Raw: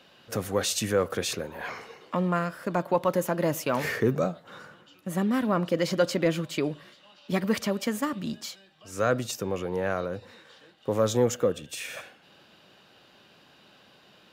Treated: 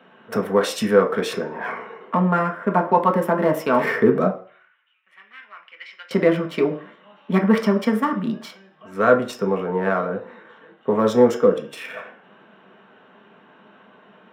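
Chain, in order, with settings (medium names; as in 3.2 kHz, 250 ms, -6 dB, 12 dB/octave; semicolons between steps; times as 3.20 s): local Wiener filter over 9 samples; 4.30–6.11 s: ladder band-pass 2.7 kHz, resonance 55%; reverberation RT60 0.45 s, pre-delay 3 ms, DRR 2 dB; trim -1.5 dB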